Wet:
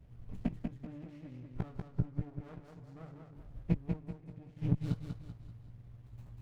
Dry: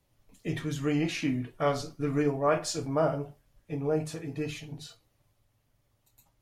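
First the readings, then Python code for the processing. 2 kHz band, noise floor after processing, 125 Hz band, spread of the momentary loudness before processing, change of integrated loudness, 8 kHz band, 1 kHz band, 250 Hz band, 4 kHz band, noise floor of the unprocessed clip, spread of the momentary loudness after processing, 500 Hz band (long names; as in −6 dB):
−20.0 dB, −56 dBFS, −2.0 dB, 13 LU, −9.0 dB, below −30 dB, −21.0 dB, −8.0 dB, below −20 dB, −73 dBFS, 18 LU, −21.0 dB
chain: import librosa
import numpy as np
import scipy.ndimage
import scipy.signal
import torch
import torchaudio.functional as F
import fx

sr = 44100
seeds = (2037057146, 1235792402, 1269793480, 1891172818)

p1 = fx.gate_flip(x, sr, shuts_db=-30.0, range_db=-32)
p2 = fx.bass_treble(p1, sr, bass_db=13, treble_db=-12)
p3 = fx.doubler(p2, sr, ms=17.0, db=-6.0)
p4 = p3 + fx.echo_feedback(p3, sr, ms=192, feedback_pct=40, wet_db=-4.5, dry=0)
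p5 = fx.running_max(p4, sr, window=33)
y = F.gain(torch.from_numpy(p5), 4.5).numpy()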